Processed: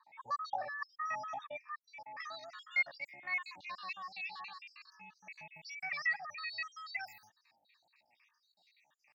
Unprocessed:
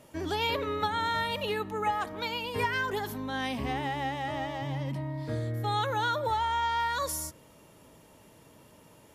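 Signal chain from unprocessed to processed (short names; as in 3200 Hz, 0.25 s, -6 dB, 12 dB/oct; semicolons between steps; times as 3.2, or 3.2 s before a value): random spectral dropouts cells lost 67%; fixed phaser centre 1500 Hz, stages 8; pitch shift +5.5 st; band-pass sweep 1100 Hz -> 2700 Hz, 1.3–4.25; gain +6 dB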